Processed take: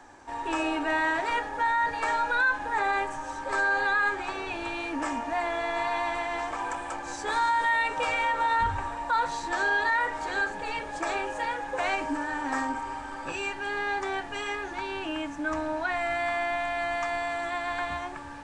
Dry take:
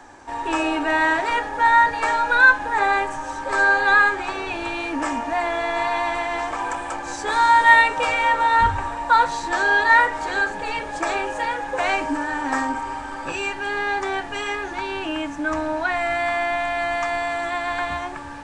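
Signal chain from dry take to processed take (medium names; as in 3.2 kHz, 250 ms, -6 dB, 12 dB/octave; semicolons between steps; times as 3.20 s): peak limiter -11.5 dBFS, peak gain reduction 8.5 dB; trim -6 dB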